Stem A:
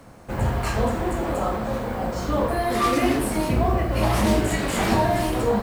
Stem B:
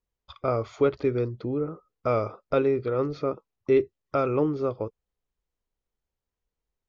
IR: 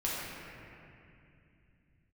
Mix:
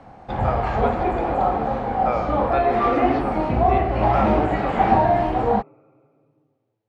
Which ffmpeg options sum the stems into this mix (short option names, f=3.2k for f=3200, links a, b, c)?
-filter_complex "[0:a]acrossover=split=2600[a][b];[b]acompressor=threshold=-43dB:ratio=4:attack=1:release=60[c];[a][c]amix=inputs=2:normalize=0,volume=-0.5dB[d];[1:a]highpass=f=1.3k:p=1,volume=1dB,asplit=2[e][f];[f]volume=-6.5dB[g];[2:a]atrim=start_sample=2205[h];[g][h]afir=irnorm=-1:irlink=0[i];[d][e][i]amix=inputs=3:normalize=0,lowpass=3.3k,equalizer=f=780:t=o:w=0.28:g=14.5"